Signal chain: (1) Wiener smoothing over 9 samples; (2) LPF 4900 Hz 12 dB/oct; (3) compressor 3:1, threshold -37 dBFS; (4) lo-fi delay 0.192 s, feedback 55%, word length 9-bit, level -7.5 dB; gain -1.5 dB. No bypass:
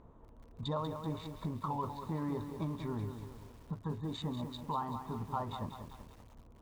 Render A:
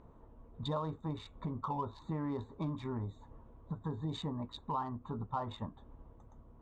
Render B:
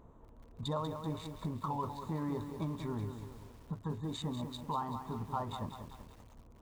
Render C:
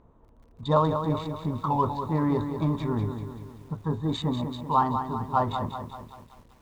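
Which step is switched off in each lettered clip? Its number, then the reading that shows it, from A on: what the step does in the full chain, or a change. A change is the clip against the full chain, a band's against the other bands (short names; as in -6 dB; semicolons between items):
4, momentary loudness spread change +6 LU; 2, 8 kHz band +4.5 dB; 3, mean gain reduction 7.5 dB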